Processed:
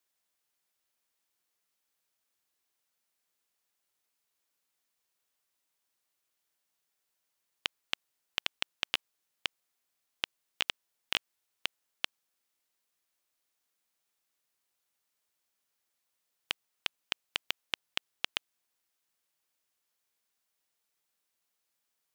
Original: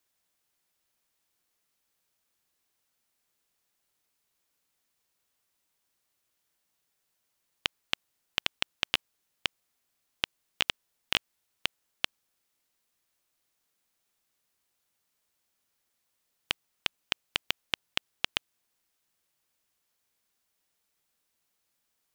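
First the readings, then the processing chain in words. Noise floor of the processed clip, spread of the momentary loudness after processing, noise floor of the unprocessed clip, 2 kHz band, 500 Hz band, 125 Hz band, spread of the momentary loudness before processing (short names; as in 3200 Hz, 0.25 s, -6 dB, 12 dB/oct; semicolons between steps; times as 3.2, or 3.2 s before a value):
-82 dBFS, 5 LU, -79 dBFS, -3.5 dB, -5.0 dB, -9.5 dB, 5 LU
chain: low shelf 230 Hz -8 dB; gain -3.5 dB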